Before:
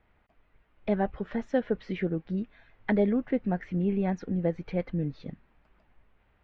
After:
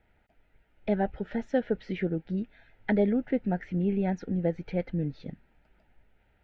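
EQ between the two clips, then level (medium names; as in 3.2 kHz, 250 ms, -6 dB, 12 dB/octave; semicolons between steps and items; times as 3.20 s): Butterworth band-stop 1.1 kHz, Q 3.4; 0.0 dB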